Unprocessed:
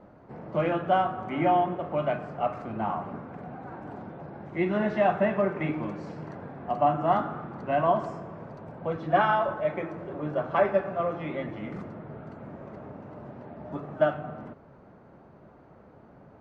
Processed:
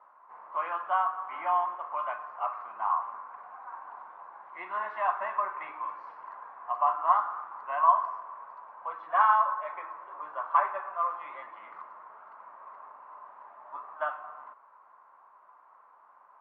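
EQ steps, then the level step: ladder band-pass 1100 Hz, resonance 80%; tilt shelf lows -3.5 dB, about 700 Hz; +6.0 dB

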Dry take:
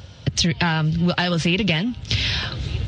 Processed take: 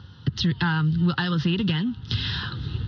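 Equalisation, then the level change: HPF 92 Hz; air absorption 190 m; fixed phaser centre 2300 Hz, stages 6; 0.0 dB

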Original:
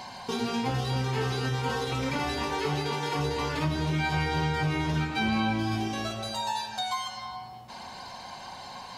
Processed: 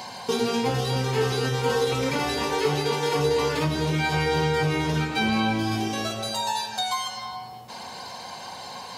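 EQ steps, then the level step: HPF 87 Hz; bell 470 Hz +8.5 dB 0.29 oct; high shelf 5900 Hz +7.5 dB; +3.0 dB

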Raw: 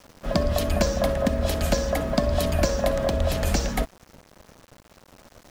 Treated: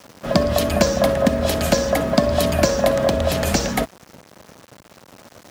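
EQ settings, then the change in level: HPF 100 Hz 12 dB/oct; +6.5 dB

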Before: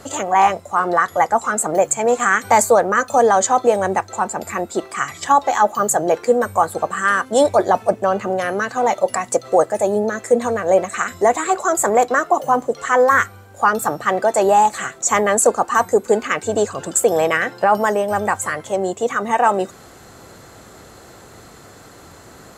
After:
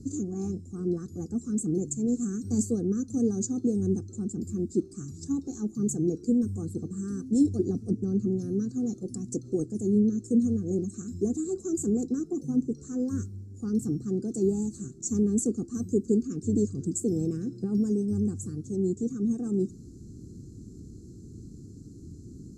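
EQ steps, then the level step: inverse Chebyshev band-stop 560–3300 Hz, stop band 40 dB; tape spacing loss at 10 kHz 24 dB; +3.5 dB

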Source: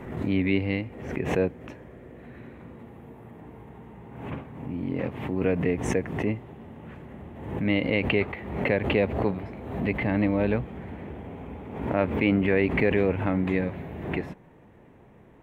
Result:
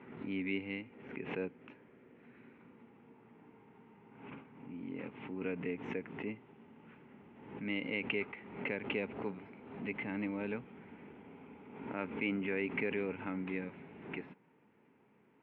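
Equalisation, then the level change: speaker cabinet 320–2700 Hz, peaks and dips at 340 Hz -7 dB, 510 Hz -4 dB, 730 Hz -6 dB, 1100 Hz -7 dB, 1800 Hz -9 dB; bell 610 Hz -10.5 dB 0.65 oct; -4.5 dB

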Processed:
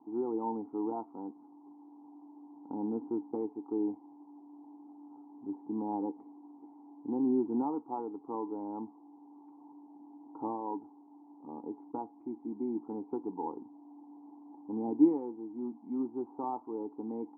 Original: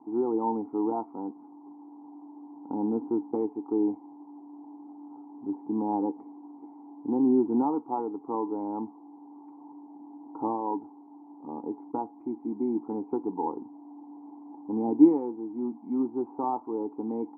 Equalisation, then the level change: air absorption 220 m; -6.0 dB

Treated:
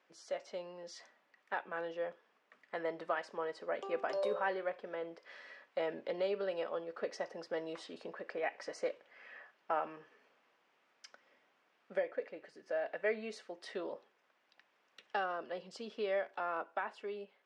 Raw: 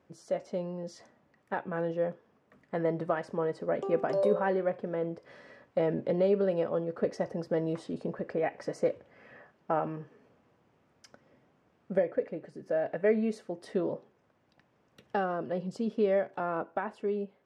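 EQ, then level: dynamic EQ 2000 Hz, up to -3 dB, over -48 dBFS, Q 1.2; BPF 200–3000 Hz; differentiator; +14.5 dB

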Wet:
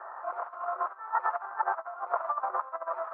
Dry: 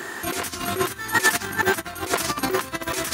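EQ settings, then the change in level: Chebyshev band-pass 590–1300 Hz, order 3; -1.0 dB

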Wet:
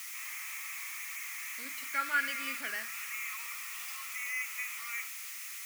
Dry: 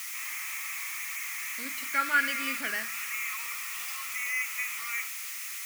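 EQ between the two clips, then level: low shelf 200 Hz -10.5 dB; -5.0 dB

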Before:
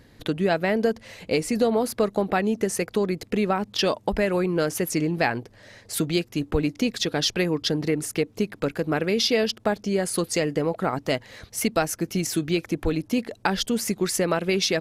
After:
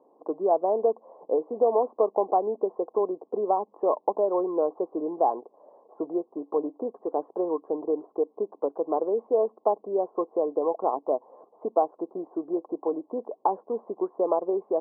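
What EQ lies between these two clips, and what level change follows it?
HPF 410 Hz 24 dB/oct; rippled Chebyshev low-pass 1100 Hz, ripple 3 dB; +4.0 dB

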